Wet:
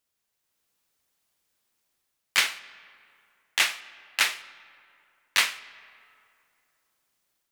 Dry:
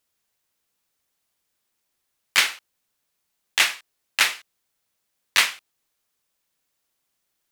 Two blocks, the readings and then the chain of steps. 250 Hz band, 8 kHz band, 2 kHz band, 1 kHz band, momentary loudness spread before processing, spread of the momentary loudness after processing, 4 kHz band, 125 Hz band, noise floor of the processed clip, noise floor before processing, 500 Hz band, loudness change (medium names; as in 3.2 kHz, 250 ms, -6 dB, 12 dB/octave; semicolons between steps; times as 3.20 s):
-4.0 dB, -4.0 dB, -4.0 dB, -4.0 dB, 10 LU, 16 LU, -4.0 dB, no reading, -80 dBFS, -77 dBFS, -3.5 dB, -4.0 dB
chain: level rider gain up to 5.5 dB; algorithmic reverb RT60 2.7 s, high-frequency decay 0.55×, pre-delay 5 ms, DRR 16.5 dB; trim -5 dB